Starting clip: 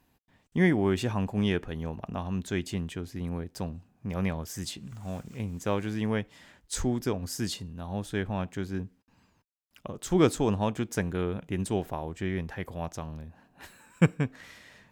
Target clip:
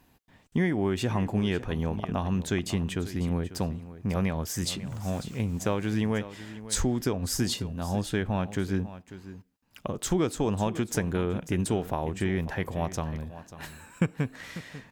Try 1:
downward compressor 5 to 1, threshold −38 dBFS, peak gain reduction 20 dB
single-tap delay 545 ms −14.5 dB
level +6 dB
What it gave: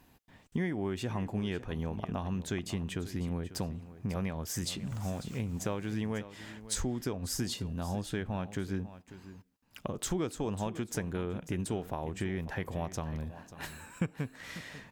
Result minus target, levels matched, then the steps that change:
downward compressor: peak gain reduction +7 dB
change: downward compressor 5 to 1, threshold −29 dBFS, peak gain reduction 13 dB

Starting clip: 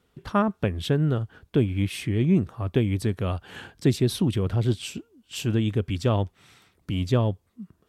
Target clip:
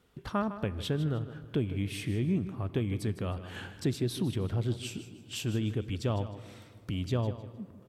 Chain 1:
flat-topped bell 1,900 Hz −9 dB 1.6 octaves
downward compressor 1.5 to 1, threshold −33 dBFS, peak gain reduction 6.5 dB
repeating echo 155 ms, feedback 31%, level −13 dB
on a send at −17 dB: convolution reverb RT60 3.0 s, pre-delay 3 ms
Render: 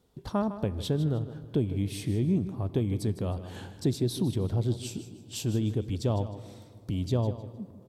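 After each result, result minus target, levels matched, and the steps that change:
2,000 Hz band −9.0 dB; downward compressor: peak gain reduction −3 dB
remove: flat-topped bell 1,900 Hz −9 dB 1.6 octaves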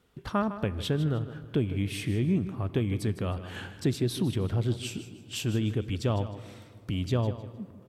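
downward compressor: peak gain reduction −3 dB
change: downward compressor 1.5 to 1, threshold −42 dBFS, peak gain reduction 9.5 dB

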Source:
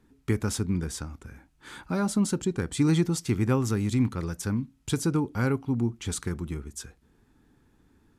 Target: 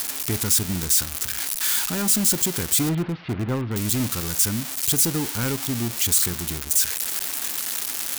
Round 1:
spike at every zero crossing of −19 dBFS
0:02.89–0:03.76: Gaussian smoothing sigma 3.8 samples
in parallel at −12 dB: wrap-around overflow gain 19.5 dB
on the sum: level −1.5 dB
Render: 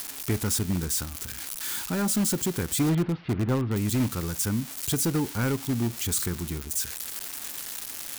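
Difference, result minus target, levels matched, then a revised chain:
spike at every zero crossing: distortion −7 dB
spike at every zero crossing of −11.5 dBFS
0:02.89–0:03.76: Gaussian smoothing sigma 3.8 samples
in parallel at −12 dB: wrap-around overflow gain 19.5 dB
on the sum: level −1.5 dB

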